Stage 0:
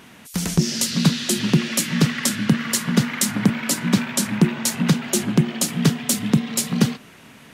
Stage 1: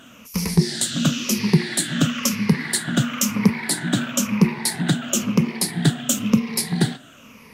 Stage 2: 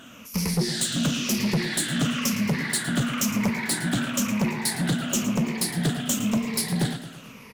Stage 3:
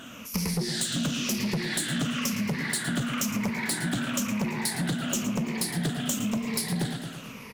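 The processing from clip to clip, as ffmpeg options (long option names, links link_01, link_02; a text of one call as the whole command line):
ffmpeg -i in.wav -af "afftfilt=real='re*pow(10,13/40*sin(2*PI*(0.85*log(max(b,1)*sr/1024/100)/log(2)-(-0.99)*(pts-256)/sr)))':imag='im*pow(10,13/40*sin(2*PI*(0.85*log(max(b,1)*sr/1024/100)/log(2)-(-0.99)*(pts-256)/sr)))':win_size=1024:overlap=0.75,flanger=delay=2.7:depth=9:regen=-81:speed=1.4:shape=sinusoidal,volume=2dB" out.wav
ffmpeg -i in.wav -filter_complex "[0:a]asoftclip=type=tanh:threshold=-19dB,asplit=2[link_01][link_02];[link_02]aecho=0:1:111|222|333|444|555|666:0.224|0.128|0.0727|0.0415|0.0236|0.0135[link_03];[link_01][link_03]amix=inputs=2:normalize=0" out.wav
ffmpeg -i in.wav -af "acompressor=threshold=-29dB:ratio=5,volume=2.5dB" out.wav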